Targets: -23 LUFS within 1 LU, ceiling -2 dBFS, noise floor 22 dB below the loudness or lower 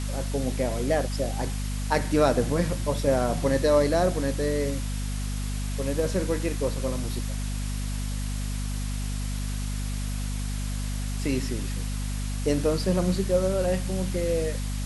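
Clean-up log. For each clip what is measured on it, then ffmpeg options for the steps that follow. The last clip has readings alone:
hum 50 Hz; harmonics up to 250 Hz; hum level -27 dBFS; noise floor -30 dBFS; noise floor target -50 dBFS; loudness -27.5 LUFS; peak -7.5 dBFS; loudness target -23.0 LUFS
-> -af "bandreject=f=50:t=h:w=4,bandreject=f=100:t=h:w=4,bandreject=f=150:t=h:w=4,bandreject=f=200:t=h:w=4,bandreject=f=250:t=h:w=4"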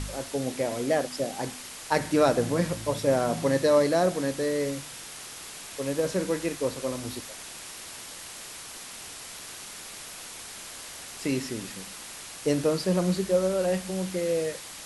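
hum none; noise floor -42 dBFS; noise floor target -51 dBFS
-> -af "afftdn=nr=9:nf=-42"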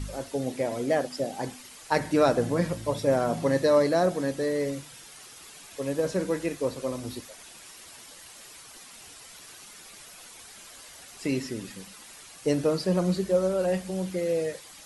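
noise floor -48 dBFS; noise floor target -50 dBFS
-> -af "afftdn=nr=6:nf=-48"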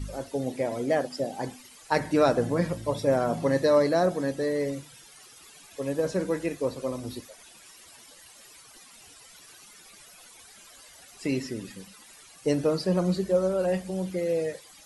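noise floor -52 dBFS; loudness -27.5 LUFS; peak -9.0 dBFS; loudness target -23.0 LUFS
-> -af "volume=4.5dB"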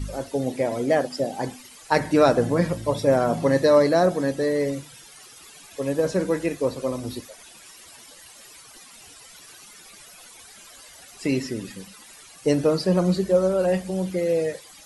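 loudness -23.0 LUFS; peak -4.5 dBFS; noise floor -47 dBFS

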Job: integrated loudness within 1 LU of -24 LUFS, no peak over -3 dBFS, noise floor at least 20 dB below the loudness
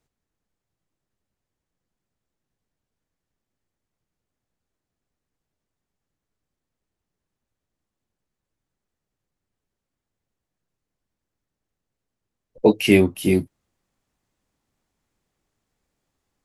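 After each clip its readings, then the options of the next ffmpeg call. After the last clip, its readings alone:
loudness -19.0 LUFS; peak -2.5 dBFS; loudness target -24.0 LUFS
-> -af "volume=-5dB"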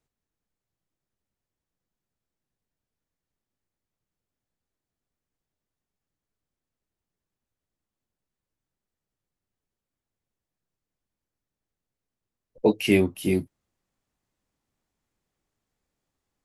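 loudness -24.0 LUFS; peak -7.5 dBFS; noise floor -89 dBFS

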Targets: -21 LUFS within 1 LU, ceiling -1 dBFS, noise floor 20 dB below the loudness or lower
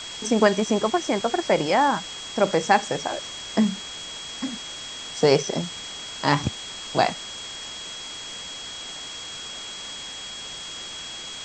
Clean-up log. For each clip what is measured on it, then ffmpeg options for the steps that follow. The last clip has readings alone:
steady tone 3300 Hz; tone level -36 dBFS; noise floor -37 dBFS; noise floor target -46 dBFS; loudness -25.5 LUFS; peak -4.5 dBFS; loudness target -21.0 LUFS
-> -af "bandreject=f=3.3k:w=30"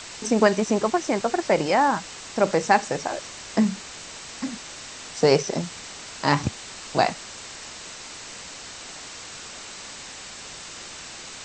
steady tone none; noise floor -40 dBFS; noise floor target -44 dBFS
-> -af "afftdn=nr=6:nf=-40"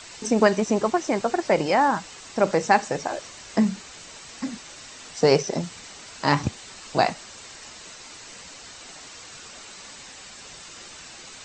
noise floor -44 dBFS; loudness -23.5 LUFS; peak -4.5 dBFS; loudness target -21.0 LUFS
-> -af "volume=2.5dB"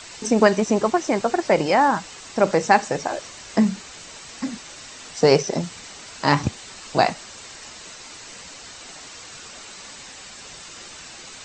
loudness -21.0 LUFS; peak -2.0 dBFS; noise floor -41 dBFS

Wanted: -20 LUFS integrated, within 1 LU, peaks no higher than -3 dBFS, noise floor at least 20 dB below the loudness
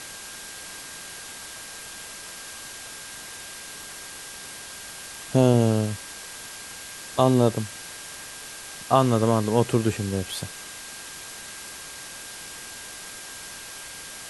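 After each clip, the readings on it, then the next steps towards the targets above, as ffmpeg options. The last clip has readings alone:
steady tone 1600 Hz; tone level -47 dBFS; noise floor -40 dBFS; noise floor target -48 dBFS; loudness -28.0 LUFS; peak -4.0 dBFS; loudness target -20.0 LUFS
-> -af "bandreject=f=1.6k:w=30"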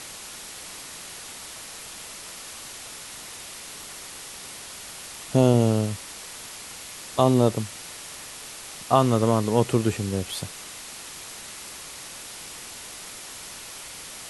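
steady tone none; noise floor -40 dBFS; noise floor target -48 dBFS
-> -af "afftdn=nr=8:nf=-40"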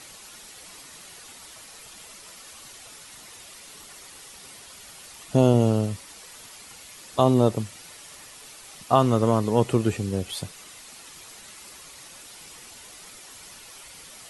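noise floor -46 dBFS; loudness -23.0 LUFS; peak -4.0 dBFS; loudness target -20.0 LUFS
-> -af "volume=3dB,alimiter=limit=-3dB:level=0:latency=1"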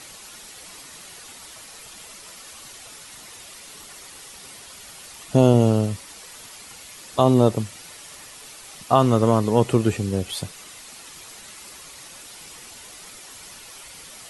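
loudness -20.0 LUFS; peak -3.0 dBFS; noise floor -43 dBFS

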